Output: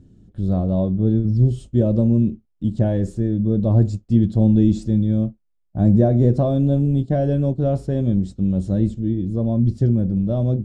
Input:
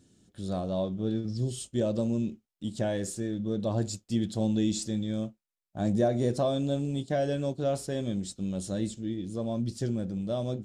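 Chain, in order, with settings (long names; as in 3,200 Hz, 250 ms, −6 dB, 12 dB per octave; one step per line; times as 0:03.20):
spectral tilt −4.5 dB per octave
level +2 dB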